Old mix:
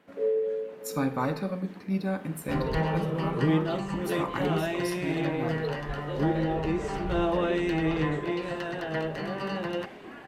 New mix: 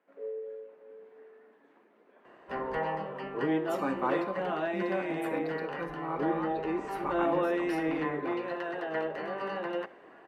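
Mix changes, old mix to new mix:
speech: entry +2.85 s; first sound -10.5 dB; master: add three-band isolator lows -20 dB, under 280 Hz, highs -14 dB, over 2400 Hz

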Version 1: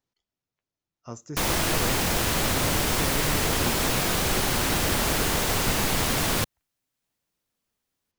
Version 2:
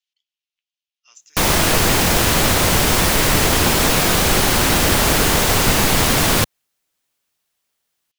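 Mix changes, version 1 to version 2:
speech: add resonant high-pass 2900 Hz, resonance Q 3.2; background +9.0 dB

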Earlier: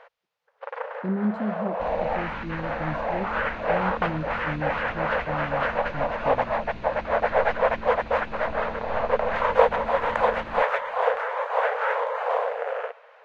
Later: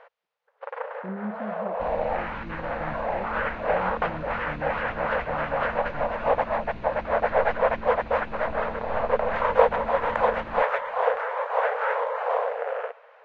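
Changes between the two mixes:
speech -8.0 dB; master: add high shelf 3700 Hz -8.5 dB

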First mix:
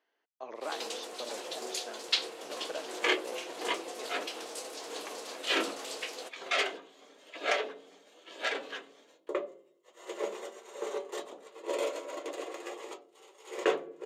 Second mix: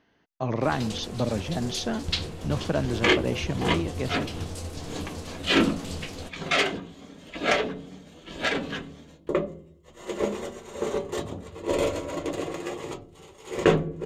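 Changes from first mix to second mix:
speech +11.5 dB; second sound +6.0 dB; master: remove HPF 390 Hz 24 dB/oct

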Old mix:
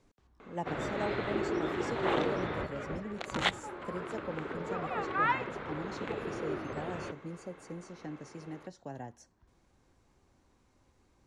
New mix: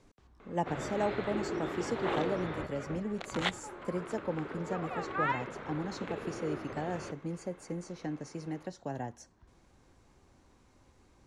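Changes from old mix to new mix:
speech +5.0 dB; background -3.0 dB

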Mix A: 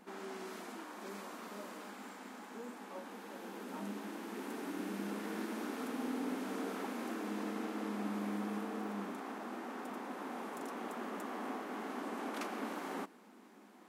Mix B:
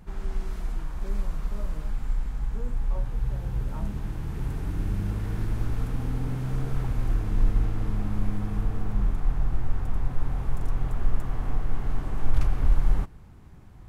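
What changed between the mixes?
speech +5.0 dB; master: remove brick-wall FIR high-pass 200 Hz

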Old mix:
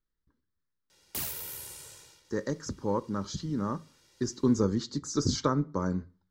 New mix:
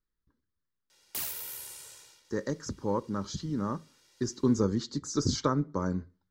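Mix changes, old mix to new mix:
speech: send -6.0 dB; background: add low shelf 380 Hz -10.5 dB

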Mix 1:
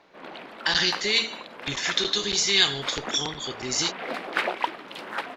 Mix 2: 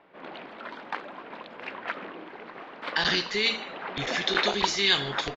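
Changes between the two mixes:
speech: entry +2.30 s; master: add air absorption 130 m

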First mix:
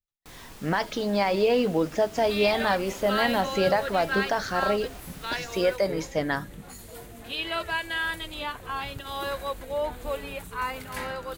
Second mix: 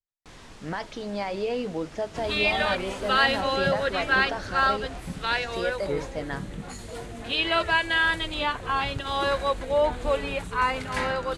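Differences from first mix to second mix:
speech -6.5 dB; second sound +6.5 dB; master: add Bessel low-pass 6700 Hz, order 6

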